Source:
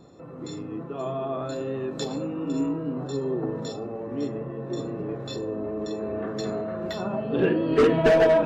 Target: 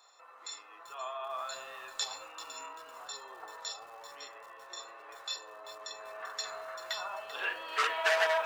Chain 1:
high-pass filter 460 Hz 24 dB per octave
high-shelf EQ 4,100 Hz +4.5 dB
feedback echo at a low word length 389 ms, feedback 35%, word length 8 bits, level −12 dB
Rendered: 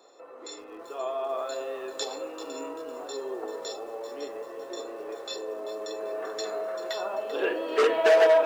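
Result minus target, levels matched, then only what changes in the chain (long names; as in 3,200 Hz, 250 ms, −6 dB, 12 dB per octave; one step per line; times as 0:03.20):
500 Hz band +7.0 dB
change: high-pass filter 930 Hz 24 dB per octave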